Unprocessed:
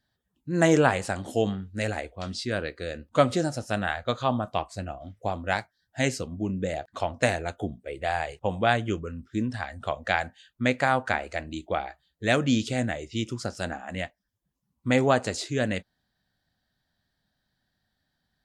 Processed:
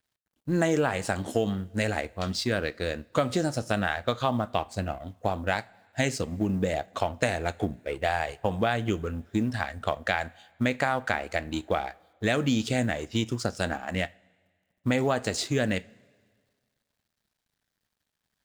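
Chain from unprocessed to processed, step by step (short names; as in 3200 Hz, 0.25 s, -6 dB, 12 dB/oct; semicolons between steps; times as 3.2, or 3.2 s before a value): G.711 law mismatch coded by A; in parallel at -1 dB: limiter -15 dBFS, peak gain reduction 9.5 dB; on the sum: two-slope reverb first 0.28 s, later 1.8 s, from -20 dB, DRR 17.5 dB; compressor 4:1, threshold -22 dBFS, peak gain reduction 9.5 dB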